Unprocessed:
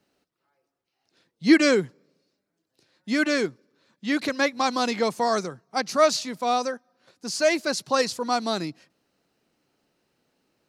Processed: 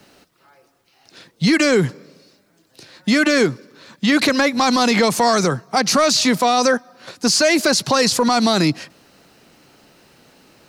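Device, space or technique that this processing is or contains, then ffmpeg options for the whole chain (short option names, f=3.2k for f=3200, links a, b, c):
mastering chain: -filter_complex "[0:a]equalizer=f=360:t=o:w=1.7:g=-3,acrossover=split=330|1500|5600[a][b][c][d];[a]acompressor=threshold=-30dB:ratio=4[e];[b]acompressor=threshold=-27dB:ratio=4[f];[c]acompressor=threshold=-32dB:ratio=4[g];[d]acompressor=threshold=-37dB:ratio=4[h];[e][f][g][h]amix=inputs=4:normalize=0,acompressor=threshold=-29dB:ratio=2,asoftclip=type=tanh:threshold=-20dB,alimiter=level_in=29dB:limit=-1dB:release=50:level=0:latency=1,volume=-7dB"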